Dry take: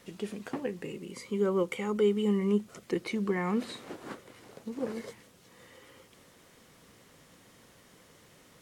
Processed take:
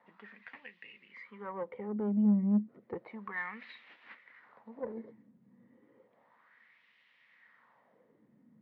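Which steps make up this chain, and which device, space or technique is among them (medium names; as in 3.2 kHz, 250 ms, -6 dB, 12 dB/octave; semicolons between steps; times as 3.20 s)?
wah-wah guitar rig (wah-wah 0.32 Hz 220–2800 Hz, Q 2.7; valve stage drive 27 dB, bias 0.35; cabinet simulation 78–4100 Hz, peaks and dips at 130 Hz +7 dB, 220 Hz +9 dB, 370 Hz -6 dB, 940 Hz +5 dB, 1.9 kHz +9 dB, 3 kHz -4 dB)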